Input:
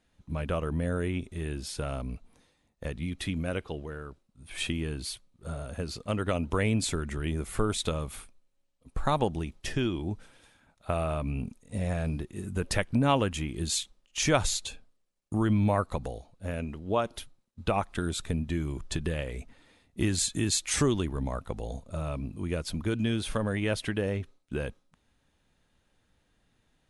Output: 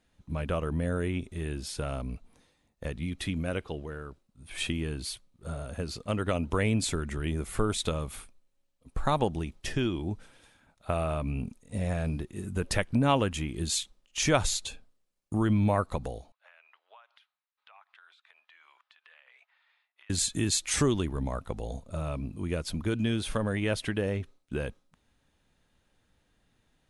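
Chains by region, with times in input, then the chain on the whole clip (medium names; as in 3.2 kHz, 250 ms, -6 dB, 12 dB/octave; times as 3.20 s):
16.32–20.10 s: Bessel high-pass 1.4 kHz, order 6 + compression 12:1, threshold -48 dBFS + distance through air 340 m
whole clip: none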